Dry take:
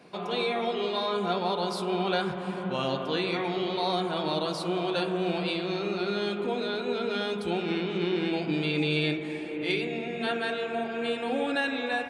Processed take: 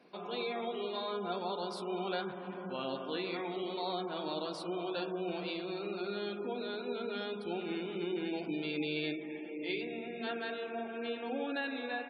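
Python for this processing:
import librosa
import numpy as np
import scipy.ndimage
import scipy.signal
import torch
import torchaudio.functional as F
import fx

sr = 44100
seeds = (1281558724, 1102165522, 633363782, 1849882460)

y = fx.low_shelf_res(x, sr, hz=180.0, db=-7.0, q=1.5)
y = fx.spec_gate(y, sr, threshold_db=-30, keep='strong')
y = y * 10.0 ** (-9.0 / 20.0)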